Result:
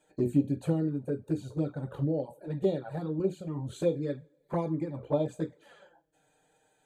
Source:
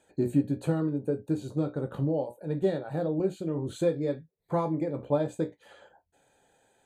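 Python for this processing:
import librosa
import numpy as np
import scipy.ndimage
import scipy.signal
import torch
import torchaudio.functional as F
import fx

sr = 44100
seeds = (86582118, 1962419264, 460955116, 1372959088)

y = fx.rev_double_slope(x, sr, seeds[0], early_s=0.47, late_s=2.0, knee_db=-18, drr_db=19.0)
y = fx.env_flanger(y, sr, rest_ms=6.7, full_db=-22.0)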